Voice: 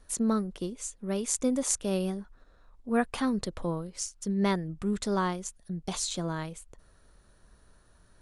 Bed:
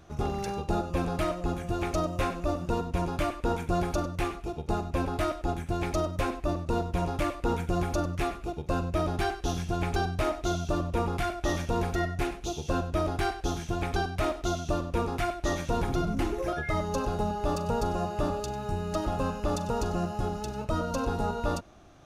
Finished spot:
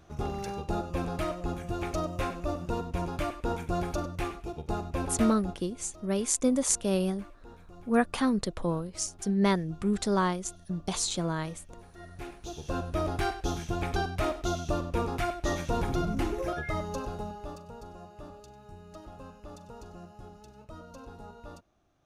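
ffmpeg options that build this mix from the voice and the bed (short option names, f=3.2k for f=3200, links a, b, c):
-filter_complex "[0:a]adelay=5000,volume=2dB[a];[1:a]volume=19dB,afade=t=out:st=5.24:d=0.38:silence=0.1,afade=t=in:st=11.95:d=1.19:silence=0.0794328,afade=t=out:st=16.39:d=1.27:silence=0.158489[b];[a][b]amix=inputs=2:normalize=0"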